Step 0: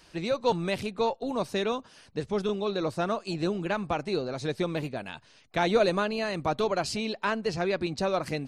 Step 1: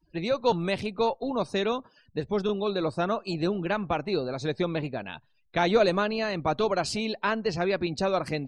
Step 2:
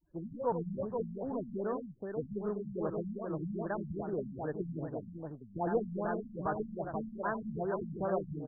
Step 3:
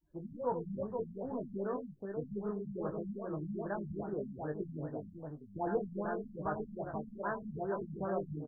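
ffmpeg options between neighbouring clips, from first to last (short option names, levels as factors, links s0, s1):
-af "afftdn=nr=36:nf=-50,volume=1.19"
-af "aecho=1:1:76|98|482:0.126|0.422|0.596,acrusher=bits=4:mode=log:mix=0:aa=0.000001,afftfilt=real='re*lt(b*sr/1024,230*pow(1900/230,0.5+0.5*sin(2*PI*2.5*pts/sr)))':imag='im*lt(b*sr/1024,230*pow(1900/230,0.5+0.5*sin(2*PI*2.5*pts/sr)))':win_size=1024:overlap=0.75,volume=0.376"
-filter_complex "[0:a]asplit=2[s0][s1];[s1]adelay=20,volume=0.501[s2];[s0][s2]amix=inputs=2:normalize=0,volume=0.708"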